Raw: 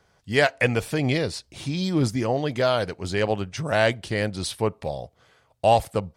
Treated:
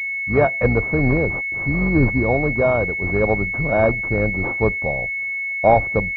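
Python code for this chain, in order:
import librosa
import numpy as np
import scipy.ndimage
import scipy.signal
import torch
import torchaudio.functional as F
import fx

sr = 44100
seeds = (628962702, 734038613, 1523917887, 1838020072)

y = fx.octave_divider(x, sr, octaves=2, level_db=-5.0)
y = fx.pwm(y, sr, carrier_hz=2200.0)
y = F.gain(torch.from_numpy(y), 5.0).numpy()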